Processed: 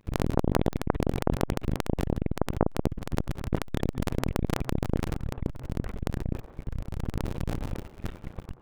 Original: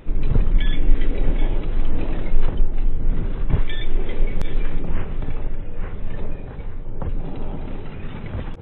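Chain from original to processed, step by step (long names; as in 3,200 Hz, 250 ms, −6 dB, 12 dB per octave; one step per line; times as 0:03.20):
sub-harmonics by changed cycles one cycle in 2, muted
hum removal 130.1 Hz, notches 2
noise gate −28 dBFS, range −17 dB
delay with a band-pass on its return 90 ms, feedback 58%, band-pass 700 Hz, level −15.5 dB
saturating transformer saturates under 730 Hz
level +2 dB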